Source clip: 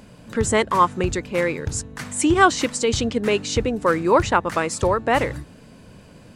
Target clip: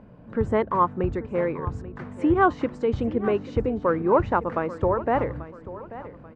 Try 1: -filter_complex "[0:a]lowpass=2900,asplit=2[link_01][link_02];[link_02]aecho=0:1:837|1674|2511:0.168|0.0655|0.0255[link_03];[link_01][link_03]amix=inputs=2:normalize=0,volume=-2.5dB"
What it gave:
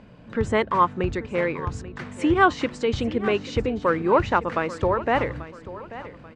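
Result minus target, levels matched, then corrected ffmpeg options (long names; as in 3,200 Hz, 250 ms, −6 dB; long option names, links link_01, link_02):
4,000 Hz band +12.5 dB
-filter_complex "[0:a]lowpass=1200,asplit=2[link_01][link_02];[link_02]aecho=0:1:837|1674|2511:0.168|0.0655|0.0255[link_03];[link_01][link_03]amix=inputs=2:normalize=0,volume=-2.5dB"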